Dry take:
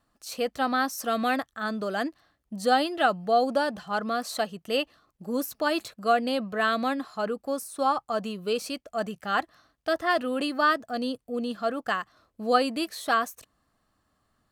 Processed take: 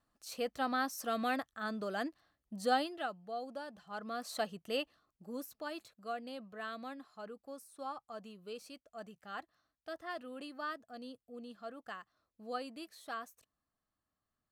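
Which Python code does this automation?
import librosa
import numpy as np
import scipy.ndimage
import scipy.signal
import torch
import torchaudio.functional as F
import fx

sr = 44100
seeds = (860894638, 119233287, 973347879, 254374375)

y = fx.gain(x, sr, db=fx.line((2.76, -8.5), (3.16, -19.0), (3.7, -19.0), (4.47, -7.0), (5.87, -18.0)))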